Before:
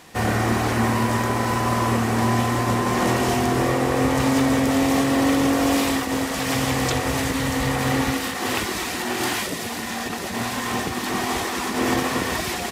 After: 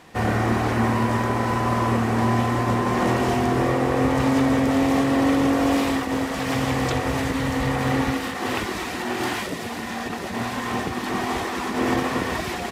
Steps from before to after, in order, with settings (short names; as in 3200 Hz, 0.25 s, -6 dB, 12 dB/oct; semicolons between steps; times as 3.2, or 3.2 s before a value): high shelf 4000 Hz -10 dB